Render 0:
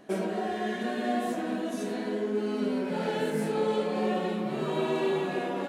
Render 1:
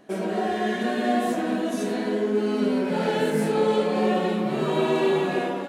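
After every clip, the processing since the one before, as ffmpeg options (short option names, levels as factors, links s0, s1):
-af "dynaudnorm=f=100:g=5:m=2"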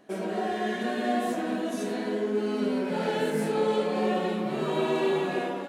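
-af "lowshelf=f=130:g=-5,volume=0.668"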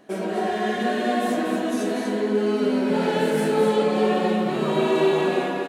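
-af "aecho=1:1:242:0.531,volume=1.68"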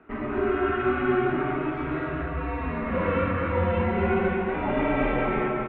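-af "highpass=310,highpass=f=570:t=q:w=0.5412,highpass=f=570:t=q:w=1.307,lowpass=f=2700:t=q:w=0.5176,lowpass=f=2700:t=q:w=0.7071,lowpass=f=2700:t=q:w=1.932,afreqshift=-350,volume=1.5"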